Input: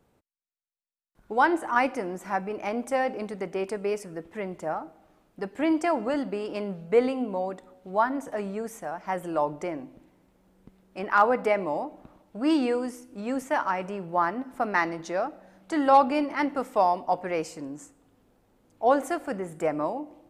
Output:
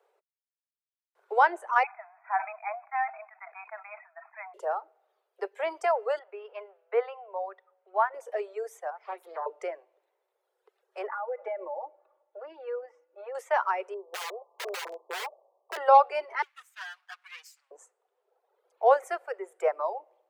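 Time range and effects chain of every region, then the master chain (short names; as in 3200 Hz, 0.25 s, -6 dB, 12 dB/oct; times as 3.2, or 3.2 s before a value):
1.83–4.54 brick-wall FIR band-pass 630–2600 Hz + sustainer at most 88 dB/s
6.19–8.14 BPF 640–3300 Hz + air absorption 190 m
8.9–9.46 bell 540 Hz -7.5 dB 0.32 oct + compressor 1.5:1, threshold -43 dBFS + Doppler distortion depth 0.58 ms
11.07–13.35 comb 3.5 ms, depth 87% + compressor 10:1, threshold -26 dBFS + tape spacing loss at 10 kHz 43 dB
13.94–15.77 brick-wall FIR band-pass 320–1200 Hz + wrapped overs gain 27 dB
16.42–17.71 minimum comb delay 8.1 ms + Bessel high-pass 2300 Hz, order 4
whole clip: reverb removal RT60 1.8 s; steep high-pass 390 Hz 96 dB/oct; high shelf 3400 Hz -10.5 dB; gain +1.5 dB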